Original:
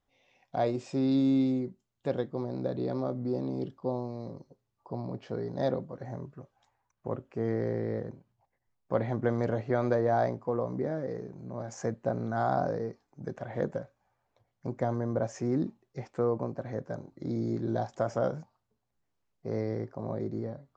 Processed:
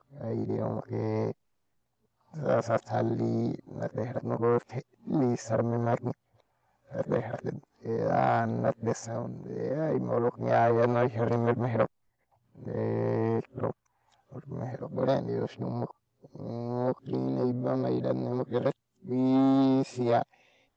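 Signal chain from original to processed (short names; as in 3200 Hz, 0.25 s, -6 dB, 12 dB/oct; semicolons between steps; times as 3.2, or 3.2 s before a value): whole clip reversed; core saturation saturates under 770 Hz; gain +4 dB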